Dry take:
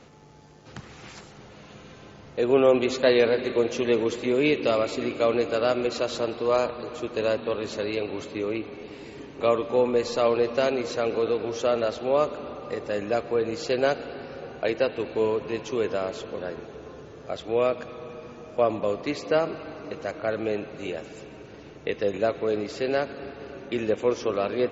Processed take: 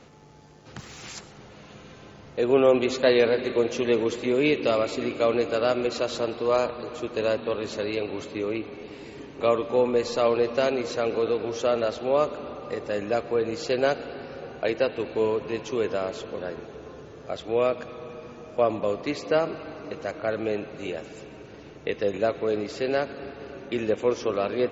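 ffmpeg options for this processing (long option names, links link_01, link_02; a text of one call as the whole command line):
ffmpeg -i in.wav -filter_complex "[0:a]asplit=3[link_01][link_02][link_03];[link_01]afade=type=out:start_time=0.78:duration=0.02[link_04];[link_02]aemphasis=mode=production:type=75kf,afade=type=in:start_time=0.78:duration=0.02,afade=type=out:start_time=1.18:duration=0.02[link_05];[link_03]afade=type=in:start_time=1.18:duration=0.02[link_06];[link_04][link_05][link_06]amix=inputs=3:normalize=0" out.wav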